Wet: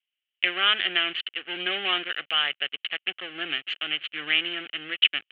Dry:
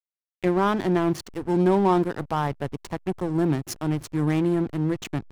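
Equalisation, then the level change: Butterworth band-pass 2 kHz, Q 0.71; resonant low-pass 3 kHz, resonance Q 10; static phaser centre 2.3 kHz, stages 4; +7.5 dB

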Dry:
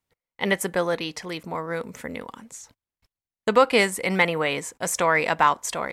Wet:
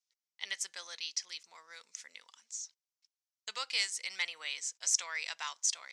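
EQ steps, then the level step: band-pass filter 5.8 kHz, Q 2.8; distance through air 97 m; tilt EQ +4 dB/octave; 0.0 dB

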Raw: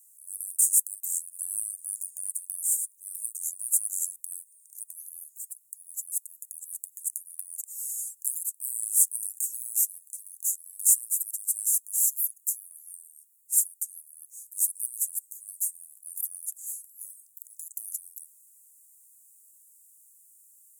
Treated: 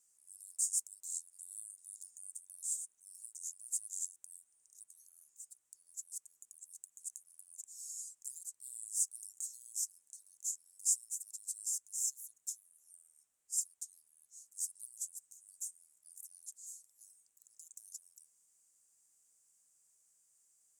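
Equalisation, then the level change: distance through air 150 m; treble shelf 7.1 kHz -8 dB; +11.0 dB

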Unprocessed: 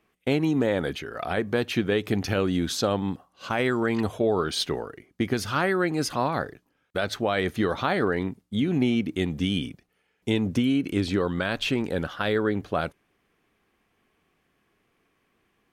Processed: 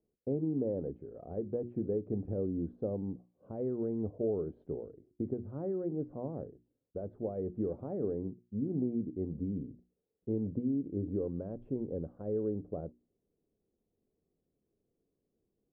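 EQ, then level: Chebyshev low-pass 510 Hz, order 3; hum notches 60/120/180/240/300/360 Hz; -8.0 dB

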